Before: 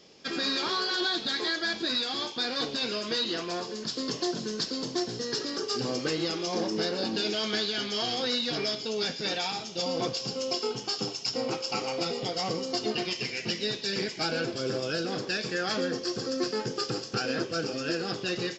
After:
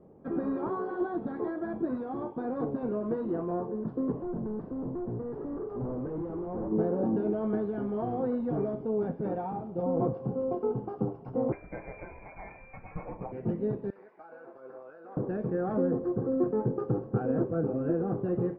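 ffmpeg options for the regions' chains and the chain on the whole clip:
-filter_complex "[0:a]asettb=1/sr,asplit=3[s0][s1][s2];[s0]atrim=end=4.124[s3];[s1]atrim=start=4.12:end=6.72,asetpts=PTS-STARTPTS,afade=t=in:d=0.004:c=qsin,afade=t=out:st=2.596:d=0.004:c=qsin,volume=56.2,asoftclip=hard,volume=0.0178,bandreject=f=4200:w=15[s4];[s2]atrim=start=6.716[s5];[s3][s4]acrossfade=d=0.004:c1=hsin:c2=qsin[s6];[s6][s5]acrossfade=d=0.004:c1=qsin:c2=hsin,asettb=1/sr,asplit=3[s7][s8][s9];[s7]atrim=end=11.524[s10];[s8]atrim=start=11.52:end=13.32,asetpts=PTS-STARTPTS,afade=t=in:d=0.004:c=qsin,afade=t=out:st=1.796:d=0.004:c=qsin,highpass=f=580:t=q:w=5,lowpass=f=2500:t=q:w=0.5098,lowpass=f=2500:t=q:w=0.6013,lowpass=f=2500:t=q:w=0.9,lowpass=f=2500:t=q:w=2.563,afreqshift=-2900[s11];[s9]atrim=start=13.316[s12];[s10][s11]acrossfade=d=0.004:c1=hsin:c2=qsin[s13];[s13][s12]acrossfade=d=0.004:c1=qsin:c2=hsin,asettb=1/sr,asplit=3[s14][s15][s16];[s14]atrim=end=13.904[s17];[s15]atrim=start=13.9:end=15.17,asetpts=PTS-STARTPTS,afade=t=in:d=0.004:c=qsin,afade=t=out:st=1.266:d=0.004:c=qsin,highpass=1100,bandreject=f=3100:w=6,acompressor=threshold=0.0141:ratio=4:attack=3.2:release=140:knee=1:detection=peak[s18];[s16]atrim=start=15.166[s19];[s17][s18]acrossfade=d=0.004:c1=hsin:c2=qsin[s20];[s20][s19]acrossfade=d=0.004:c1=qsin:c2=hsin,lowpass=f=1000:w=0.5412,lowpass=f=1000:w=1.3066,lowshelf=f=230:g=10.5"

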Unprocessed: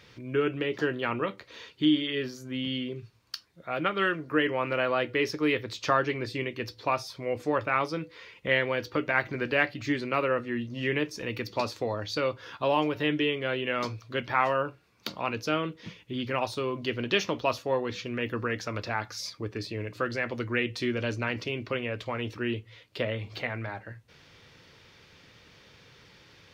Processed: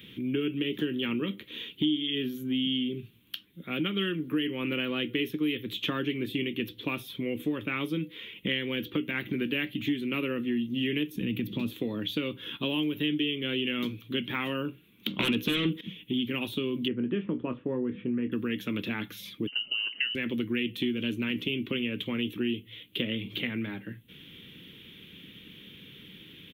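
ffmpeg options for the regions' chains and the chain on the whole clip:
-filter_complex "[0:a]asettb=1/sr,asplit=3[s0][s1][s2];[s0]atrim=end=11.154[s3];[s1]atrim=start=11.15:end=11.74,asetpts=PTS-STARTPTS,afade=t=in:d=0.004:c=qsin,afade=t=out:st=0.586:d=0.004:c=qsin,acompressor=threshold=0.00891:ratio=1.5:attack=3.2:release=140:knee=1:detection=peak,bass=f=250:g=13,treble=f=4000:g=-1[s4];[s2]atrim=start=11.736[s5];[s3][s4]acrossfade=d=0.004:c1=hsin:c2=qsin[s6];[s6][s5]acrossfade=d=0.004:c1=qsin:c2=hsin,asettb=1/sr,asplit=3[s7][s8][s9];[s7]atrim=end=15.194[s10];[s8]atrim=start=15.19:end=15.81,asetpts=PTS-STARTPTS,afade=t=in:d=0.004:c=qsin,afade=t=out:st=0.616:d=0.004:c=qsin,equalizer=f=980:w=0.66:g=3,aeval=exprs='0.224*sin(PI/2*4.47*val(0)/0.224)':c=same[s11];[s9]atrim=start=15.806[s12];[s10][s11]acrossfade=d=0.004:c1=hsin:c2=qsin[s13];[s13][s12]acrossfade=d=0.004:c1=qsin:c2=hsin,asettb=1/sr,asplit=3[s14][s15][s16];[s14]atrim=end=16.884[s17];[s15]atrim=start=16.88:end=18.32,asetpts=PTS-STARTPTS,afade=t=in:d=0.004:c=qsin,afade=t=out:st=1.436:d=0.004:c=qsin,lowpass=f=1600:w=0.5412,lowpass=f=1600:w=1.3066,asplit=2[s18][s19];[s19]adelay=24,volume=0.316[s20];[s18][s20]amix=inputs=2:normalize=0,atrim=end_sample=63504[s21];[s16]atrim=start=18.316[s22];[s17][s21]acrossfade=d=0.004:c1=hsin:c2=qsin[s23];[s23][s22]acrossfade=d=0.004:c1=qsin:c2=hsin,asettb=1/sr,asplit=3[s24][s25][s26];[s24]atrim=end=19.474[s27];[s25]atrim=start=19.47:end=20.15,asetpts=PTS-STARTPTS,afade=t=in:d=0.004:c=qsin,afade=t=out:st=0.676:d=0.004:c=qsin,highpass=f=180:w=0.5412,highpass=f=180:w=1.3066,lowpass=f=2700:t=q:w=0.5098,lowpass=f=2700:t=q:w=0.6013,lowpass=f=2700:t=q:w=0.9,lowpass=f=2700:t=q:w=2.563,afreqshift=-3200[s28];[s26]atrim=start=20.146[s29];[s27][s28]acrossfade=d=0.004:c1=hsin:c2=qsin[s30];[s30][s29]acrossfade=d=0.004:c1=qsin:c2=hsin,firequalizer=gain_entry='entry(110,0);entry(190,13);entry(310,10);entry(650,-13);entry(3300,14);entry(4700,-17);entry(12000,15)':delay=0.05:min_phase=1,acrossover=split=120|5800[s31][s32][s33];[s31]acompressor=threshold=0.00316:ratio=4[s34];[s32]acompressor=threshold=0.0398:ratio=4[s35];[s33]acompressor=threshold=0.00355:ratio=4[s36];[s34][s35][s36]amix=inputs=3:normalize=0"

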